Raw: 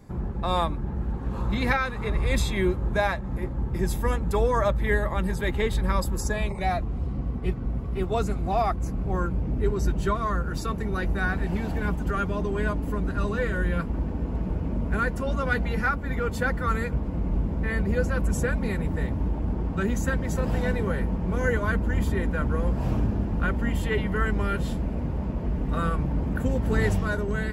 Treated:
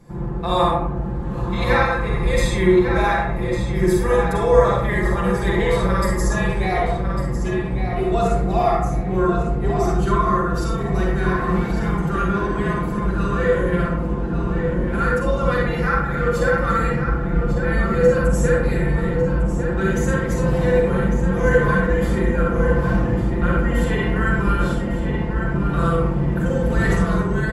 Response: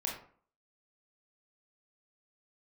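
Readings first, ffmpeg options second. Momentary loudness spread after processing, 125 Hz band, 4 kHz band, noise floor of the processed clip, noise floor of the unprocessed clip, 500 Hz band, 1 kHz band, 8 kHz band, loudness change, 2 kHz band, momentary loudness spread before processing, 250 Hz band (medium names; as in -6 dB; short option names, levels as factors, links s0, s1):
6 LU, +6.0 dB, +5.0 dB, -24 dBFS, -31 dBFS, +9.5 dB, +8.0 dB, +4.5 dB, +7.0 dB, +6.0 dB, 5 LU, +7.5 dB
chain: -filter_complex "[0:a]aecho=1:1:5.8:0.67,asplit=2[s0][s1];[s1]adelay=1151,lowpass=f=4900:p=1,volume=0.447,asplit=2[s2][s3];[s3]adelay=1151,lowpass=f=4900:p=1,volume=0.32,asplit=2[s4][s5];[s5]adelay=1151,lowpass=f=4900:p=1,volume=0.32,asplit=2[s6][s7];[s7]adelay=1151,lowpass=f=4900:p=1,volume=0.32[s8];[s0][s2][s4][s6][s8]amix=inputs=5:normalize=0[s9];[1:a]atrim=start_sample=2205,asetrate=22932,aresample=44100[s10];[s9][s10]afir=irnorm=-1:irlink=0,volume=0.75"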